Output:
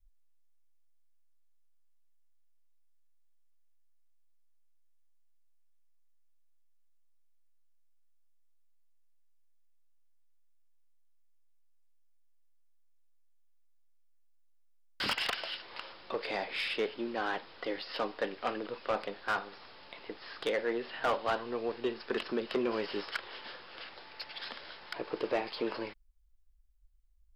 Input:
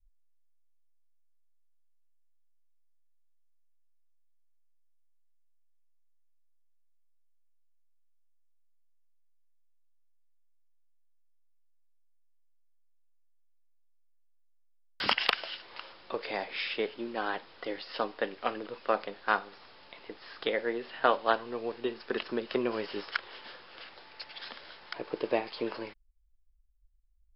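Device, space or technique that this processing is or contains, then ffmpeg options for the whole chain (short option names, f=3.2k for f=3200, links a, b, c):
saturation between pre-emphasis and de-emphasis: -af "highshelf=f=3.1k:g=8,asoftclip=type=tanh:threshold=-24.5dB,highshelf=f=3.1k:g=-8,volume=1.5dB"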